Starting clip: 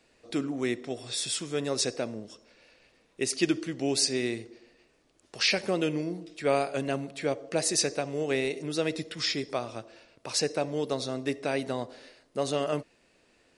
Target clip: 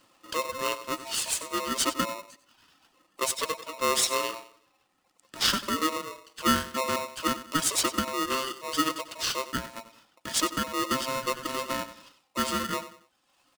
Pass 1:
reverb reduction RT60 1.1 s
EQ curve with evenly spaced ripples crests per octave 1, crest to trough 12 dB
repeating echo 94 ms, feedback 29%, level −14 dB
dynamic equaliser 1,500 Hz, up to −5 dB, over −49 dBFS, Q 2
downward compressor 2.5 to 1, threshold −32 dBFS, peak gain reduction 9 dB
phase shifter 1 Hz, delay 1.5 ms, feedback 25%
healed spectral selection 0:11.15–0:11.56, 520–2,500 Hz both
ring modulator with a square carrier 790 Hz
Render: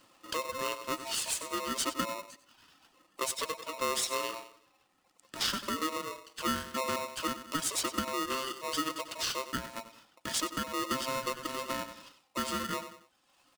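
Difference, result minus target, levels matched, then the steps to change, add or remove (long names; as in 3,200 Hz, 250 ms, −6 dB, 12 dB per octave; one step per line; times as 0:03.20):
downward compressor: peak gain reduction +9 dB
remove: downward compressor 2.5 to 1, threshold −32 dBFS, peak gain reduction 9 dB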